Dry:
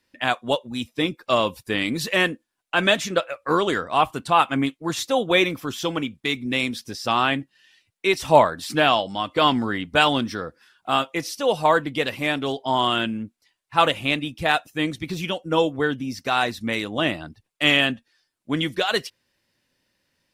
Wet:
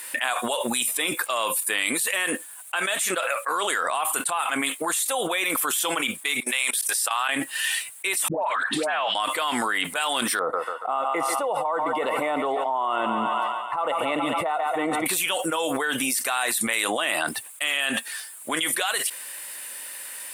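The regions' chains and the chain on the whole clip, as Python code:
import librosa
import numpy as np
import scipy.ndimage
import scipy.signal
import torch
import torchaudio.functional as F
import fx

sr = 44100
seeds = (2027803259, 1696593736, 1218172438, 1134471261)

y = fx.chain(x, sr, fx.highpass(hz=680.0, slope=12),
    fx.level_steps(step_db=22), at=(6.4, 7.29))
y = fx.chain(y, sr, fx.lowpass(hz=2500.0, slope=12),
    fx.level_steps(step_db=14),
    fx.dispersion(late='highs', ms=139.0, hz=890.0), at=(8.28, 9.15))
y = fx.chain(y, sr, fx.savgol(points=65),
    fx.echo_thinned(ms=141, feedback_pct=61, hz=410.0, wet_db=-15.5), at=(10.39, 15.06))
y = scipy.signal.sosfilt(scipy.signal.butter(2, 840.0, 'highpass', fs=sr, output='sos'), y)
y = fx.high_shelf_res(y, sr, hz=7000.0, db=10.0, q=3.0)
y = fx.env_flatten(y, sr, amount_pct=100)
y = y * librosa.db_to_amplitude(-8.5)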